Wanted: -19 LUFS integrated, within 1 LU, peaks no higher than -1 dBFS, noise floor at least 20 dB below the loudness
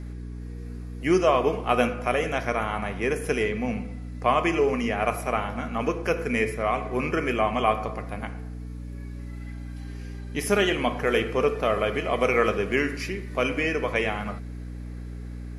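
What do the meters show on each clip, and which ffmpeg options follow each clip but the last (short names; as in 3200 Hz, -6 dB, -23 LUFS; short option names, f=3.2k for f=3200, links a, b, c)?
hum 60 Hz; harmonics up to 300 Hz; hum level -33 dBFS; loudness -25.5 LUFS; peak -6.0 dBFS; loudness target -19.0 LUFS
-> -af "bandreject=f=60:t=h:w=4,bandreject=f=120:t=h:w=4,bandreject=f=180:t=h:w=4,bandreject=f=240:t=h:w=4,bandreject=f=300:t=h:w=4"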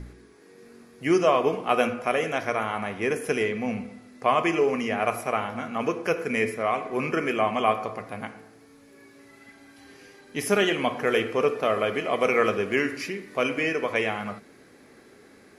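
hum none; loudness -25.5 LUFS; peak -6.0 dBFS; loudness target -19.0 LUFS
-> -af "volume=6.5dB,alimiter=limit=-1dB:level=0:latency=1"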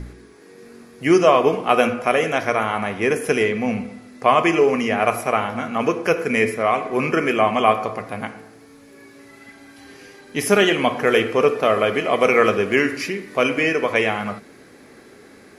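loudness -19.0 LUFS; peak -1.0 dBFS; noise floor -47 dBFS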